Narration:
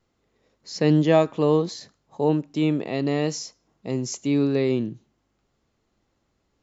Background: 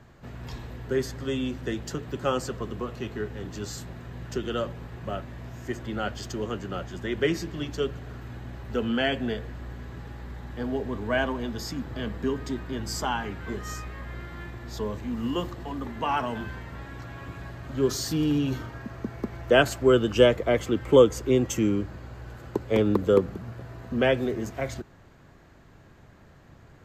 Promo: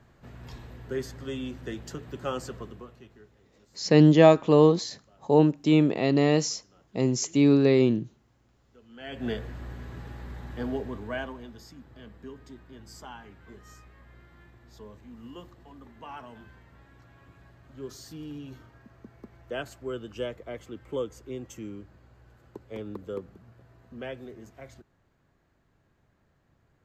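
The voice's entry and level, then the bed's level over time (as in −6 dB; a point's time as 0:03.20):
3.10 s, +2.0 dB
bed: 0:02.58 −5.5 dB
0:03.49 −29 dB
0:08.86 −29 dB
0:09.27 −1 dB
0:10.68 −1 dB
0:11.69 −15.5 dB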